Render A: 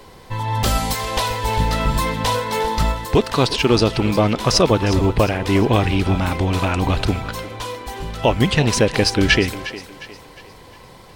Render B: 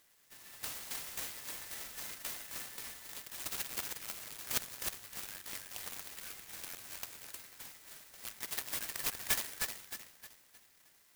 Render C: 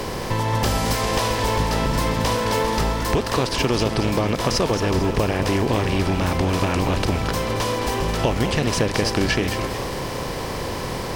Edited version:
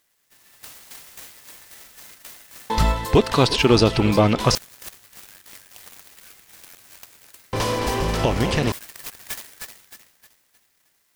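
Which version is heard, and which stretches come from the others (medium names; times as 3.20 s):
B
2.70–4.55 s: from A
7.53–8.72 s: from C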